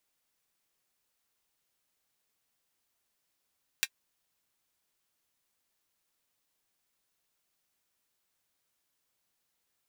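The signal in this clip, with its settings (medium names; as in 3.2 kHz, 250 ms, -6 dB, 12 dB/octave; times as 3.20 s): closed hi-hat, high-pass 2 kHz, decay 0.06 s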